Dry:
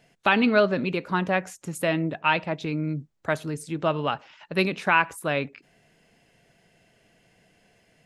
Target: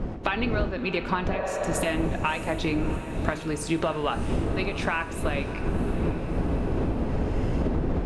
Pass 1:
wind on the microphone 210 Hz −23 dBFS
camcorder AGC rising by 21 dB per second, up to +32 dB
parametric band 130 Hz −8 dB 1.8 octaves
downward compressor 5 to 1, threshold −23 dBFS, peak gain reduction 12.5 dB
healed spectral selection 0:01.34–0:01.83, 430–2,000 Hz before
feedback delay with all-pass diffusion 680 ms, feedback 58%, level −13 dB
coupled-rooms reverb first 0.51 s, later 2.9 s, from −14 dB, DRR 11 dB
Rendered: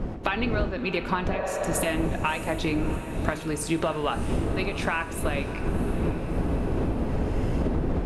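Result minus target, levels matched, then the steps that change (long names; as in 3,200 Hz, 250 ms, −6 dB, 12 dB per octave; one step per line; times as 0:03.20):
8,000 Hz band +3.0 dB
add after camcorder AGC: low-pass filter 8,400 Hz 12 dB per octave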